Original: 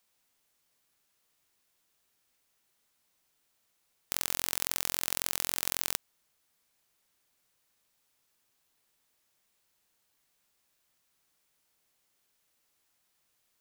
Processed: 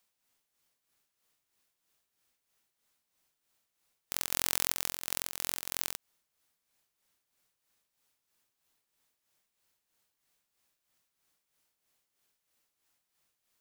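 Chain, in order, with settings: tremolo 3.1 Hz, depth 60%; 4.32–4.73 fast leveller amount 100%; gain -1 dB

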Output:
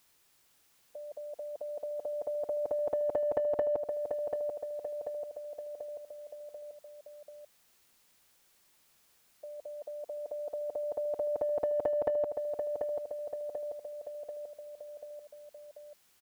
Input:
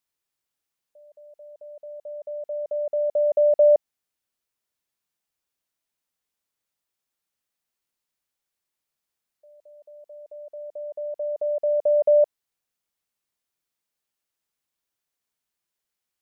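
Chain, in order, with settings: compressor, threshold -23 dBFS, peak gain reduction 9.5 dB; feedback echo 0.738 s, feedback 41%, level -9 dB; spectral compressor 2:1

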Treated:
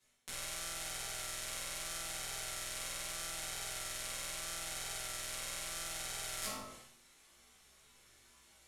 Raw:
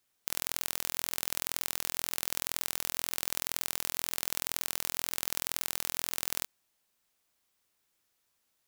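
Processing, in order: LPF 11000 Hz 24 dB/oct; notch 4800 Hz, Q 13; de-hum 52.13 Hz, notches 26; reverse; compressor 4:1, threshold -54 dBFS, peak gain reduction 20 dB; reverse; chorus 0.78 Hz, delay 15.5 ms, depth 2.4 ms; flutter echo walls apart 7.9 m, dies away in 0.37 s; reverb RT60 0.55 s, pre-delay 5 ms, DRR -9 dB; sustainer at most 51 dB/s; gain +9 dB

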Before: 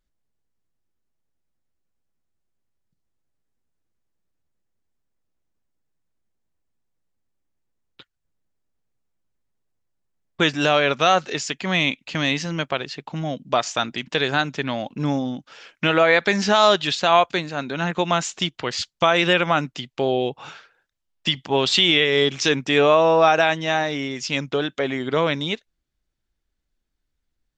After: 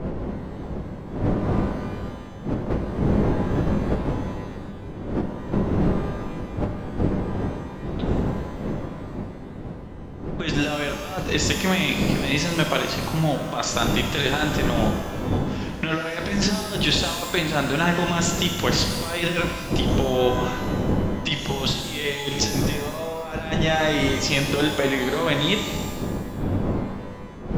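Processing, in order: wind noise 290 Hz -23 dBFS; negative-ratio compressor -22 dBFS, ratio -0.5; shimmer reverb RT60 1.4 s, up +12 st, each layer -8 dB, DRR 3.5 dB; gain -1.5 dB

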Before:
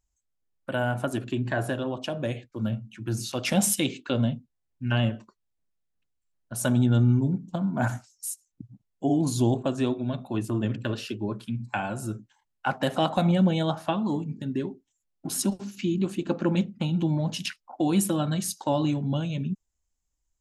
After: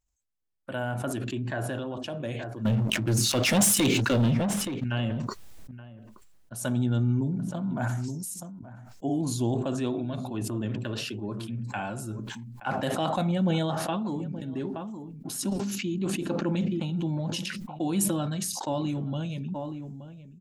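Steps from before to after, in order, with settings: 2.65–4.84 sample leveller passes 3; outdoor echo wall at 150 m, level -19 dB; sustainer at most 22 dB/s; gain -5 dB

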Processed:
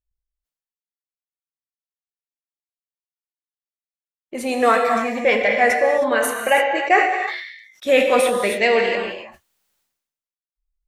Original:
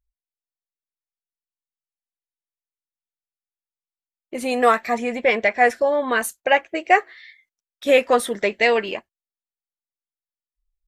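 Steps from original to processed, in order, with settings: spectral noise reduction 16 dB; non-linear reverb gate 0.33 s flat, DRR 2 dB; sustainer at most 60 dB/s; gain -1 dB

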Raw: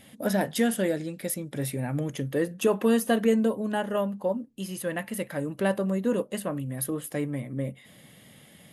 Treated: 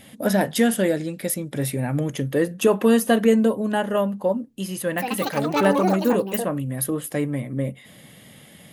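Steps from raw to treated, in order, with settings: 4.77–6.97 echoes that change speed 0.206 s, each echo +7 st, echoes 2; gain +5.5 dB

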